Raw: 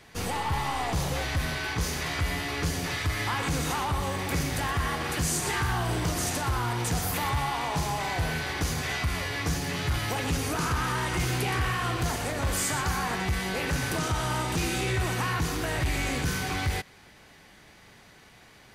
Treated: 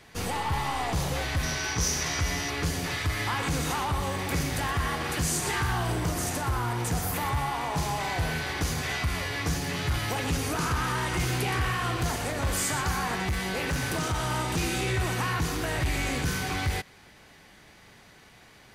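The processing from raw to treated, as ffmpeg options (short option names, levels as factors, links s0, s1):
-filter_complex "[0:a]asettb=1/sr,asplit=3[s0][s1][s2];[s0]atrim=end=1.434[s3];[s1]atrim=start=1.43:end=2.5,asetpts=PTS-STARTPTS,afade=t=in:d=0.004:c=qsin,afade=t=out:st=1.066:d=0.004:c=qsin,equalizer=f=5800:t=o:w=0.3:g=13.5[s4];[s2]atrim=start=2.496[s5];[s3][s4]acrossfade=d=0.004:c1=hsin:c2=qsin[s6];[s6][s5]acrossfade=d=0.004:c1=qsin:c2=hsin,asettb=1/sr,asplit=3[s7][s8][s9];[s7]atrim=end=5.924[s10];[s8]atrim=start=5.92:end=7.78,asetpts=PTS-STARTPTS,afade=t=in:d=0.004:c=qsin,afade=t=out:st=1.856:d=0.004:c=qsin,equalizer=f=3900:t=o:w=1.7:g=-4[s11];[s9]atrim=start=7.776[s12];[s10][s11]acrossfade=d=0.004:c1=hsin:c2=qsin[s13];[s13][s12]acrossfade=d=0.004:c1=qsin:c2=hsin,asettb=1/sr,asplit=3[s14][s15][s16];[s14]atrim=end=13.294[s17];[s15]atrim=start=13.29:end=14.32,asetpts=PTS-STARTPTS,afade=t=in:d=0.004:c=qsin,afade=t=out:st=1.026:d=0.004:c=qsin,asoftclip=type=hard:threshold=0.0668[s18];[s16]atrim=start=14.316[s19];[s17][s18]acrossfade=d=0.004:c1=hsin:c2=qsin[s20];[s20][s19]acrossfade=d=0.004:c1=qsin:c2=hsin"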